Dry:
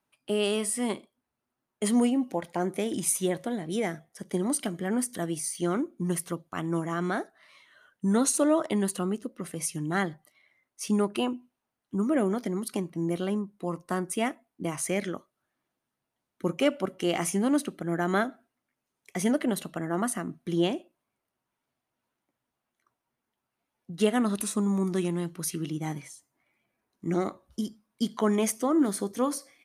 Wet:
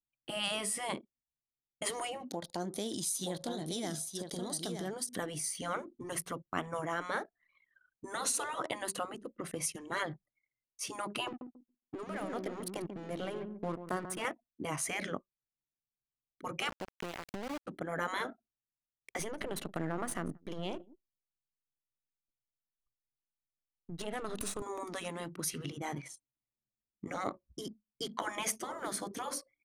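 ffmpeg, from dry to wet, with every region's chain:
-filter_complex "[0:a]asettb=1/sr,asplit=3[a][b][c];[a]atrim=end=2.274[d];[b]atrim=start=2.27:end=5.09,asetpts=PTS-STARTPTS,afade=t=in:d=0.004:c=qsin,afade=t=out:st=2.816:d=0.004:c=qsin,highshelf=f=3.1k:t=q:w=3:g=9,acompressor=threshold=-38dB:ratio=2:attack=3.2:release=140:knee=1:detection=peak,aecho=1:1:923:0.473,atrim=end_sample=124362[e];[c]atrim=start=5.086[f];[d][e]acrossfade=d=0.004:c1=hsin:c2=qsin[g];[g][f]acrossfade=d=0.004:c1=qsin:c2=hsin,asettb=1/sr,asplit=3[h][i][j];[h]atrim=end=11.274[k];[i]atrim=start=11.27:end=14.25,asetpts=PTS-STARTPTS,afade=t=in:d=0.004:c=qsin,afade=t=out:st=2.976:d=0.004:c=qsin,acompressor=threshold=-29dB:ratio=2:attack=3.2:release=140:knee=1:detection=peak,aeval=exprs='sgn(val(0))*max(abs(val(0))-0.00562,0)':c=same,asplit=2[l][m];[m]adelay=139,lowpass=f=5k:p=1,volume=-11dB,asplit=2[n][o];[o]adelay=139,lowpass=f=5k:p=1,volume=0.35,asplit=2[p][q];[q]adelay=139,lowpass=f=5k:p=1,volume=0.35,asplit=2[r][s];[s]adelay=139,lowpass=f=5k:p=1,volume=0.35[t];[l][n][p][r][t]amix=inputs=5:normalize=0,atrim=end_sample=131418[u];[j]atrim=start=14.246[v];[k][u]acrossfade=d=0.004:c1=hsin:c2=qsin[w];[w][v]acrossfade=d=0.004:c1=qsin:c2=hsin,asettb=1/sr,asplit=3[x][y][z];[x]atrim=end=16.694[aa];[y]atrim=start=16.69:end=17.67,asetpts=PTS-STARTPTS,afade=t=in:d=0.004:c=qsin,afade=t=out:st=0.976:d=0.004:c=qsin,lowpass=2.5k,acompressor=threshold=-34dB:ratio=16:attack=3.2:release=140:knee=1:detection=peak,aeval=exprs='val(0)*gte(abs(val(0)),0.0188)':c=same[ab];[z]atrim=start=17.666[ac];[aa][ab]acrossfade=d=0.004:c1=hsin:c2=qsin[ad];[ad][ac]acrossfade=d=0.004:c1=qsin:c2=hsin,asettb=1/sr,asplit=3[ae][af][ag];[ae]atrim=end=19.194[ah];[af]atrim=start=19.19:end=24.62,asetpts=PTS-STARTPTS,afade=t=in:d=0.004:c=qsin,afade=t=out:st=5.426:d=0.004:c=qsin,aeval=exprs='if(lt(val(0),0),0.447*val(0),val(0))':c=same,acompressor=threshold=-28dB:ratio=12:attack=3.2:release=140:knee=1:detection=peak,aecho=1:1:179:0.1,atrim=end_sample=239463[ai];[ag]atrim=start=24.616[aj];[ah][ai]acrossfade=d=0.004:c1=hsin:c2=qsin[ak];[ak][aj]acrossfade=d=0.004:c1=qsin:c2=hsin,anlmdn=0.01,afftfilt=real='re*lt(hypot(re,im),0.158)':imag='im*lt(hypot(re,im),0.158)':win_size=1024:overlap=0.75,highshelf=f=6.9k:g=-5.5"

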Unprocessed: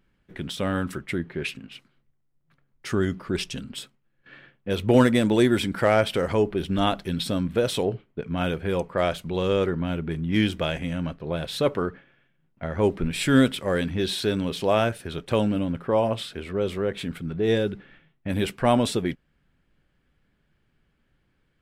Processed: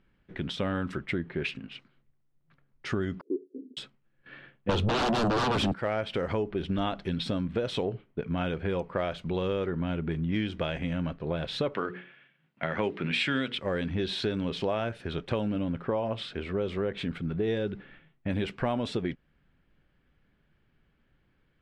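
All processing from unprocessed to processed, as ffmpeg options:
-filter_complex "[0:a]asettb=1/sr,asplit=3[a][b][c];[a]atrim=end=3.214[d];[b]atrim=start=3.21:end=3.77,asetpts=PTS-STARTPTS,afade=t=in:d=0.004:c=qsin,afade=t=out:st=0.556:d=0.004:c=qsin,agate=range=-33dB:threshold=-37dB:ratio=3:release=100:detection=peak,asuperpass=centerf=350:order=8:qfactor=1.7[e];[c]atrim=start=3.766[f];[d][e]acrossfade=d=0.004:c1=hsin:c2=qsin[g];[g][f]acrossfade=d=0.004:c1=qsin:c2=hsin,asettb=1/sr,asplit=3[h][i][j];[h]atrim=end=4.694[k];[i]atrim=start=4.69:end=5.74,asetpts=PTS-STARTPTS,afade=t=in:d=0.004:c=qsin,afade=t=out:st=1.046:d=0.004:c=qsin,aeval=exprs='0.422*sin(PI/2*7.08*val(0)/0.422)':c=same,equalizer=f=2.1k:w=2.8:g=-11[l];[j]atrim=start=5.736[m];[k][l]acrossfade=d=0.004:c1=hsin:c2=qsin[n];[n][m]acrossfade=d=0.004:c1=qsin:c2=hsin,asettb=1/sr,asplit=3[o][p][q];[o]atrim=end=11.744[r];[p]atrim=start=11.74:end=13.58,asetpts=PTS-STARTPTS,afade=t=in:d=0.004:c=qsin,afade=t=out:st=1.836:d=0.004:c=qsin,highpass=f=120:w=0.5412,highpass=f=120:w=1.3066,equalizer=f=2.6k:w=0.59:g=10,bandreject=f=60:t=h:w=6,bandreject=f=120:t=h:w=6,bandreject=f=180:t=h:w=6,bandreject=f=240:t=h:w=6,bandreject=f=300:t=h:w=6,bandreject=f=360:t=h:w=6,bandreject=f=420:t=h:w=6,bandreject=f=480:t=h:w=6[s];[q]atrim=start=13.576[t];[r][s]acrossfade=d=0.004:c1=hsin:c2=qsin[u];[u][t]acrossfade=d=0.004:c1=qsin:c2=hsin,lowpass=4k,acompressor=threshold=-26dB:ratio=6"

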